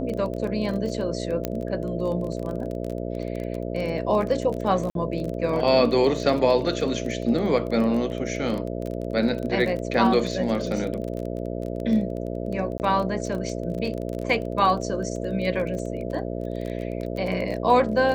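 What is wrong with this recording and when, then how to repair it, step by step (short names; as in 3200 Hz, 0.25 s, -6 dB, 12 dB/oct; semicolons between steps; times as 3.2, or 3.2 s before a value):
buzz 60 Hz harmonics 11 -30 dBFS
crackle 22/s -29 dBFS
1.45 pop -11 dBFS
4.9–4.95 gap 52 ms
12.78–12.8 gap 19 ms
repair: de-click; de-hum 60 Hz, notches 11; interpolate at 4.9, 52 ms; interpolate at 12.78, 19 ms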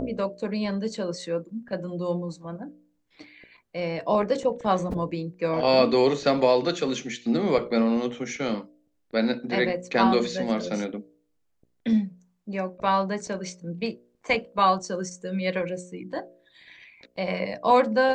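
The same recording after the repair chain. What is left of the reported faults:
none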